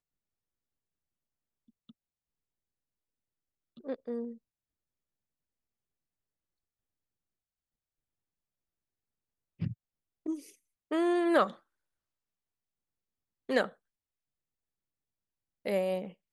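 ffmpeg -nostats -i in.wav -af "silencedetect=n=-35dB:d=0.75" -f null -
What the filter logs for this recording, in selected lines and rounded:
silence_start: 0.00
silence_end: 3.89 | silence_duration: 3.89
silence_start: 4.29
silence_end: 9.62 | silence_duration: 5.33
silence_start: 11.50
silence_end: 13.49 | silence_duration: 2.00
silence_start: 13.67
silence_end: 15.66 | silence_duration: 1.99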